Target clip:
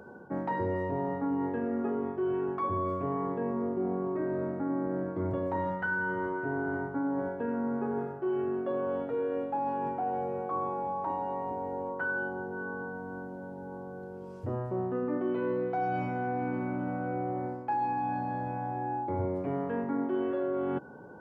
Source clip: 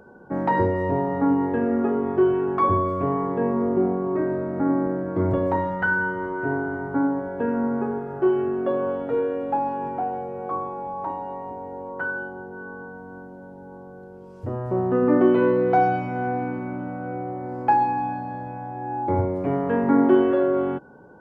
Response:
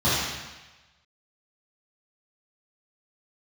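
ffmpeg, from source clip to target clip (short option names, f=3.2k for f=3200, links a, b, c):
-af "highpass=60,areverse,acompressor=threshold=-29dB:ratio=6,areverse"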